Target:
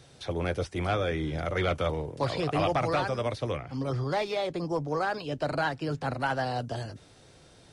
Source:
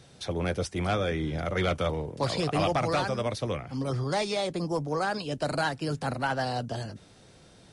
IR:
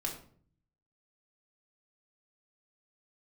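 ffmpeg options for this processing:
-filter_complex "[0:a]acrossover=split=3800[s0][s1];[s1]acompressor=threshold=0.00398:ratio=4:attack=1:release=60[s2];[s0][s2]amix=inputs=2:normalize=0,equalizer=f=200:w=5.1:g=-9,asettb=1/sr,asplit=3[s3][s4][s5];[s3]atrim=end=3.574[s6];[s4]atrim=start=3.57:end=6.2,asetpts=PTS-STARTPTS,afade=t=in:d=0.004:c=qsin,afade=t=out:st=2.626:d=0.004:c=qsin,adynamicsmooth=sensitivity=7:basefreq=7900[s7];[s5]atrim=start=6.196[s8];[s6][s7]acrossfade=d=0.004:c1=hsin:c2=qsin[s9];[s9][s8]acrossfade=d=0.004:c1=qsin:c2=hsin"

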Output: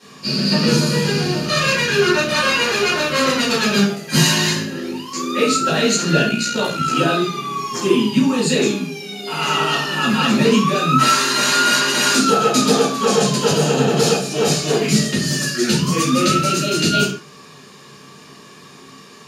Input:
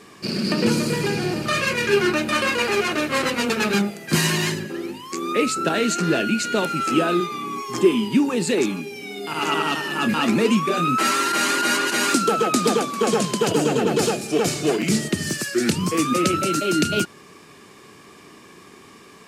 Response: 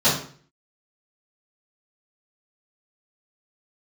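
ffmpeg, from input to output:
-filter_complex "[1:a]atrim=start_sample=2205,afade=t=out:st=0.23:d=0.01,atrim=end_sample=10584[s0];[0:a][s0]afir=irnorm=-1:irlink=0,asettb=1/sr,asplit=3[s1][s2][s3];[s1]atrim=end=6.294[s4];[s2]atrim=start=6.29:end=6.96,asetpts=PTS-STARTPTS,afade=t=in:d=0.004:c=qsin,afade=t=out:st=0.666:d=0.004:c=qsin,tremolo=f=59:d=0.462[s5];[s3]atrim=start=6.956[s6];[s4][s5]acrossfade=d=0.004:c1=hsin:c2=qsin[s7];[s7][s6]acrossfade=d=0.004:c1=qsin:c2=hsin,tiltshelf=f=1500:g=-4.5,volume=0.2"

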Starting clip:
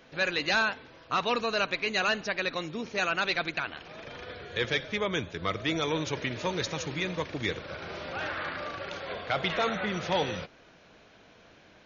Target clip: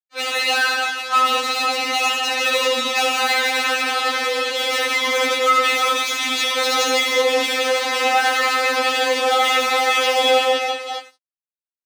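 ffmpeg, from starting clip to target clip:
-filter_complex "[0:a]asettb=1/sr,asplit=3[s0][s1][s2];[s0]atrim=end=1.574[s3];[s1]atrim=start=1.57:end=2.44,asetpts=PTS-STARTPTS,afade=t=in:d=0.004:c=qsin,afade=t=out:st=0.866:d=0.004:c=qsin,equalizer=f=1700:t=o:w=2.8:g=-11.5[s4];[s2]atrim=start=2.436[s5];[s3][s4]acrossfade=d=0.004:c1=hsin:c2=qsin[s6];[s6][s5]acrossfade=d=0.004:c1=qsin:c2=hsin,asettb=1/sr,asplit=3[s7][s8][s9];[s7]atrim=end=4.424[s10];[s8]atrim=start=4.42:end=5.02,asetpts=PTS-STARTPTS,afade=t=in:d=0.004:c=qsin,afade=t=out:st=0.596:d=0.004:c=qsin,aeval=exprs='(tanh(100*val(0)+0.45)-tanh(0.45))/100':c=same[s11];[s9]atrim=start=5.016[s12];[s10][s11]acrossfade=d=0.004:c1=hsin:c2=qsin[s13];[s13][s12]acrossfade=d=0.004:c1=qsin:c2=hsin,dynaudnorm=f=200:g=21:m=3.98,aecho=1:1:70|168|305.2|497.3|766.2:0.631|0.398|0.251|0.158|0.1,alimiter=limit=0.299:level=0:latency=1:release=125,asettb=1/sr,asplit=3[s14][s15][s16];[s14]atrim=end=5.984[s17];[s15]atrim=start=5.98:end=6.53,asetpts=PTS-STARTPTS,afade=t=in:d=0.004:c=qsin,afade=t=out:st=0.546:d=0.004:c=qsin,equalizer=f=530:t=o:w=2.1:g=-13.5[s18];[s16]atrim=start=6.526[s19];[s17][s18]acrossfade=d=0.004:c1=hsin:c2=qsin[s20];[s20][s19]acrossfade=d=0.004:c1=qsin:c2=hsin,aeval=exprs='sgn(val(0))*max(abs(val(0))-0.0106,0)':c=same,asplit=2[s21][s22];[s22]adelay=14,volume=0.668[s23];[s21][s23]amix=inputs=2:normalize=0,asplit=2[s24][s25];[s25]highpass=f=720:p=1,volume=31.6,asoftclip=type=tanh:threshold=0.376[s26];[s24][s26]amix=inputs=2:normalize=0,lowpass=f=4000:p=1,volume=0.501,highpass=280,bandreject=f=1600:w=9,afftfilt=real='re*3.46*eq(mod(b,12),0)':imag='im*3.46*eq(mod(b,12),0)':win_size=2048:overlap=0.75"

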